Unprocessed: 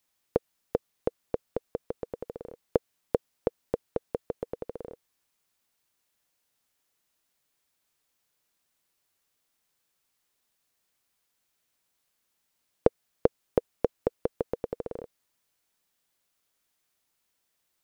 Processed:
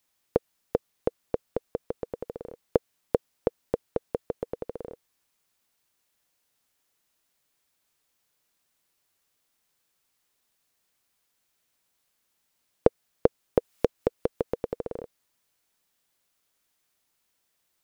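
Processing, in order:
0:13.58–0:14.76: one half of a high-frequency compander encoder only
level +2 dB

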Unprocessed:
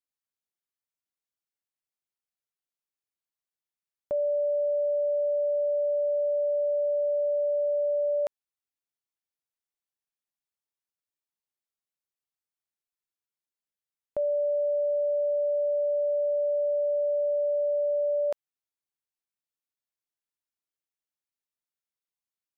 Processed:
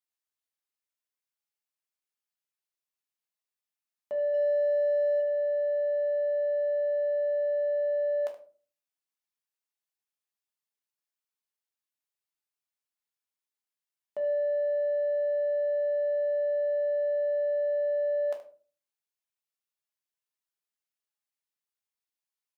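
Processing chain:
0:04.30–0:05.20: double-tracking delay 38 ms −6.5 dB
ambience of single reflections 13 ms −16.5 dB, 74 ms −14.5 dB
in parallel at −8 dB: soft clipping −31.5 dBFS, distortion −12 dB
on the sum: high-pass filter 650 Hz 6 dB per octave
rectangular room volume 250 cubic metres, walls furnished, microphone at 1.4 metres
level −4.5 dB

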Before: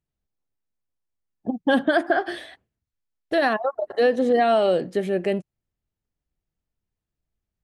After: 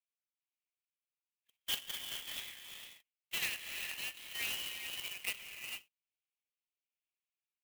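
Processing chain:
Butterworth high-pass 2,200 Hz 72 dB per octave
rotating-speaker cabinet horn 1.1 Hz
low-pass filter 3,100 Hz 24 dB per octave
reverb whose tail is shaped and stops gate 480 ms rising, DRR 4 dB
converter with an unsteady clock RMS 0.037 ms
level +4.5 dB

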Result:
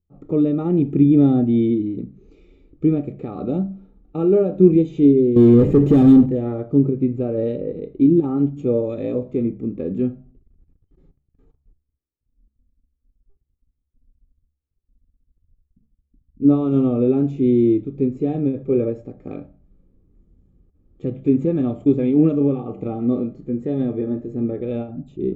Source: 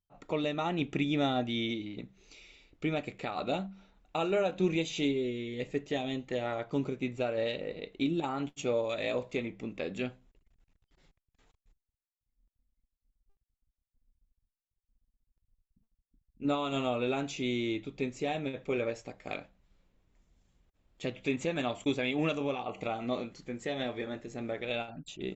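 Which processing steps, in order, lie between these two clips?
harmonic and percussive parts rebalanced harmonic +6 dB
0:05.36–0:06.26: leveller curve on the samples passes 5
convolution reverb RT60 0.50 s, pre-delay 3 ms, DRR 15.5 dB
level −7.5 dB

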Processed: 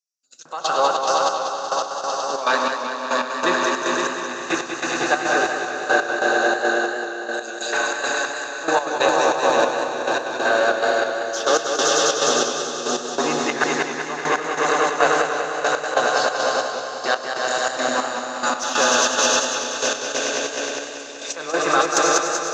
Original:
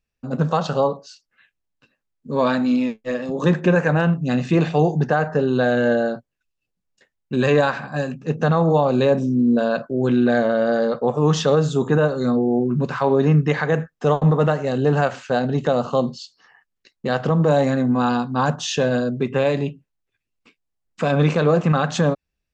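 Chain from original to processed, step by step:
graphic EQ with 15 bands 100 Hz +8 dB, 1,000 Hz −9 dB, 6,300 Hz +6 dB
convolution reverb RT60 1.0 s, pre-delay 105 ms, DRR 8 dB
auto-filter high-pass square 1.1 Hz 980–5,600 Hz
parametric band 330 Hz +13.5 dB 0.37 octaves
echo that builds up and dies away 103 ms, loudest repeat 5, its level −5.5 dB
in parallel at −7 dB: soft clipping −14 dBFS, distortion −20 dB
on the sum: gate pattern "...x..xxx.xx." 140 BPM −12 dB
feedback echo with a swinging delay time 190 ms, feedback 64%, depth 57 cents, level −7.5 dB
level +1.5 dB

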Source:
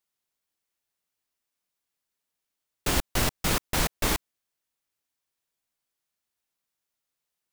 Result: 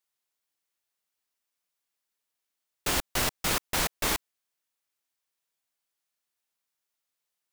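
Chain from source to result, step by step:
low-shelf EQ 330 Hz −8 dB

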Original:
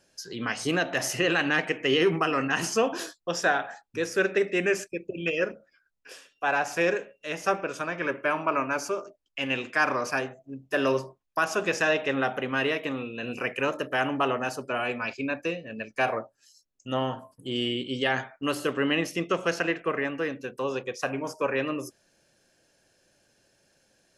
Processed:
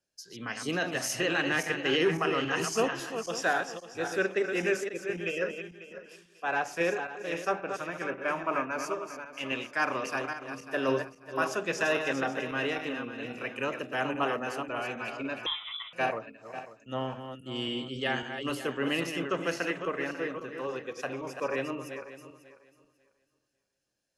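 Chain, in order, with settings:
feedback delay that plays each chunk backwards 272 ms, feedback 54%, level −6 dB
0:15.46–0:15.93: voice inversion scrambler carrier 3,700 Hz
multiband upward and downward expander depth 40%
level −5 dB

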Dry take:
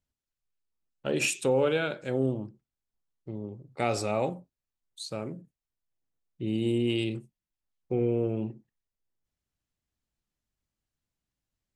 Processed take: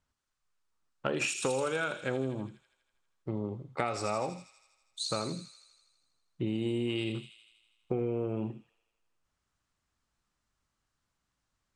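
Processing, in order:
low-pass filter 9,300 Hz 24 dB per octave
parametric band 1,200 Hz +10.5 dB 1.1 octaves
downward compressor 6 to 1, threshold −33 dBFS, peak gain reduction 14 dB
delay with a high-pass on its return 81 ms, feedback 68%, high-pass 3,700 Hz, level −3.5 dB
level +4 dB

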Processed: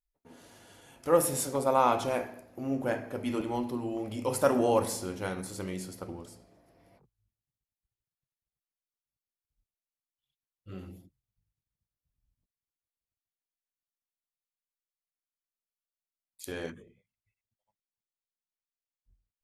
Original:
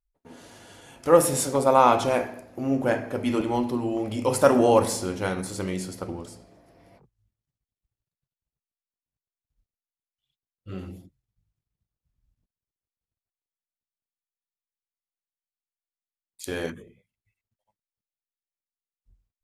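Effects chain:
parametric band 12,000 Hz +6 dB 0.32 octaves, from 0:16.52 −12 dB
level −7 dB

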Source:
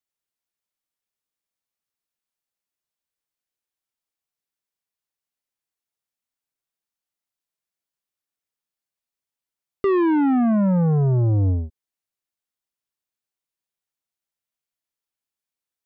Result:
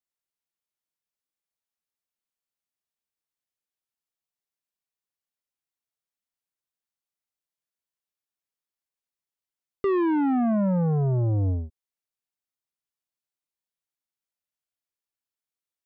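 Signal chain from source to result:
dynamic equaliser 640 Hz, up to +4 dB, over −37 dBFS, Q 1.9
level −5 dB

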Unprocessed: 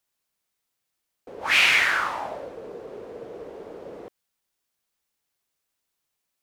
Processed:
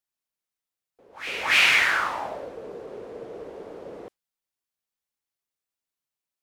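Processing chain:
noise reduction from a noise print of the clip's start 10 dB
echo ahead of the sound 284 ms −14.5 dB

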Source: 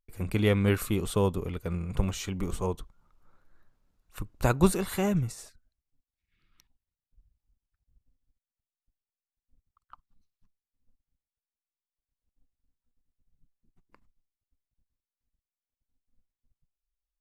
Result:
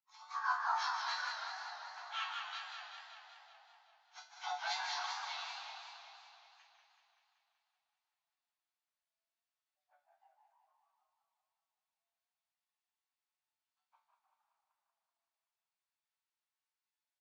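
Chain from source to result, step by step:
phase-vocoder pitch shift without resampling −10 semitones
double-tracking delay 19 ms −10.5 dB
formants moved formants −3 semitones
high-frequency loss of the air 51 metres
resonators tuned to a chord D3 major, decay 0.34 s
echo with shifted repeats 152 ms, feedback 58%, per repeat +96 Hz, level −8.5 dB
tape wow and flutter 28 cents
Butterworth high-pass 760 Hz 72 dB per octave
high-shelf EQ 6,400 Hz −6.5 dB
feedback echo with a swinging delay time 190 ms, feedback 65%, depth 112 cents, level −6 dB
level +17 dB

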